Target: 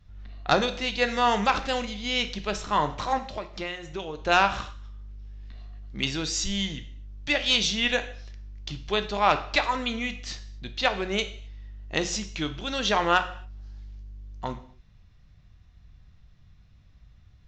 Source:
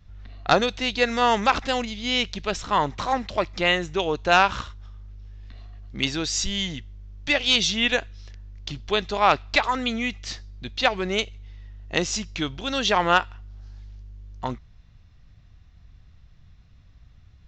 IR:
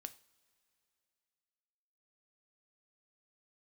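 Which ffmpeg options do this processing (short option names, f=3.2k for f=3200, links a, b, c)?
-filter_complex "[0:a]asplit=3[a][b][c];[a]afade=t=out:st=3.18:d=0.02[d];[b]acompressor=threshold=-28dB:ratio=6,afade=t=in:st=3.18:d=0.02,afade=t=out:st=4.17:d=0.02[e];[c]afade=t=in:st=4.17:d=0.02[f];[d][e][f]amix=inputs=3:normalize=0[g];[1:a]atrim=start_sample=2205,afade=t=out:st=0.23:d=0.01,atrim=end_sample=10584,asetrate=29106,aresample=44100[h];[g][h]afir=irnorm=-1:irlink=0"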